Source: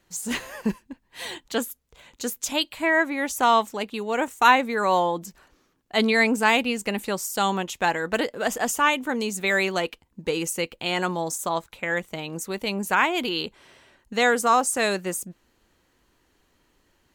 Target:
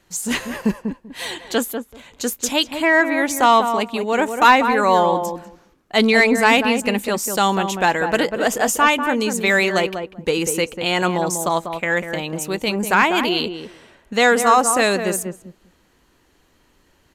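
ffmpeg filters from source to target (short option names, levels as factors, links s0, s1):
-filter_complex "[0:a]acontrast=54,aresample=32000,aresample=44100,asplit=2[s0][s1];[s1]adelay=194,lowpass=f=1100:p=1,volume=0.501,asplit=2[s2][s3];[s3]adelay=194,lowpass=f=1100:p=1,volume=0.15,asplit=2[s4][s5];[s5]adelay=194,lowpass=f=1100:p=1,volume=0.15[s6];[s0][s2][s4][s6]amix=inputs=4:normalize=0"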